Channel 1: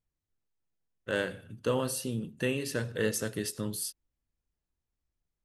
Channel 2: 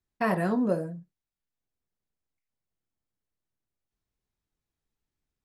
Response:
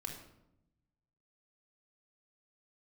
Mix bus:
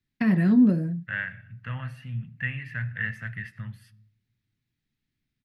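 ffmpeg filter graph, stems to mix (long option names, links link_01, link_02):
-filter_complex "[0:a]firequalizer=gain_entry='entry(110,0);entry(350,-28);entry(660,1);entry(1000,2);entry(1900,8);entry(3800,-21)':delay=0.05:min_phase=1,agate=range=-10dB:threshold=-56dB:ratio=16:detection=peak,volume=-7dB,asplit=2[link_01][link_02];[link_02]volume=-14dB[link_03];[1:a]acrossover=split=400[link_04][link_05];[link_05]acompressor=threshold=-33dB:ratio=6[link_06];[link_04][link_06]amix=inputs=2:normalize=0,volume=-1dB[link_07];[2:a]atrim=start_sample=2205[link_08];[link_03][link_08]afir=irnorm=-1:irlink=0[link_09];[link_01][link_07][link_09]amix=inputs=3:normalize=0,equalizer=frequency=125:width_type=o:width=1:gain=11,equalizer=frequency=250:width_type=o:width=1:gain=10,equalizer=frequency=500:width_type=o:width=1:gain=-6,equalizer=frequency=1000:width_type=o:width=1:gain=-6,equalizer=frequency=2000:width_type=o:width=1:gain=10,equalizer=frequency=4000:width_type=o:width=1:gain=7,equalizer=frequency=8000:width_type=o:width=1:gain=-5"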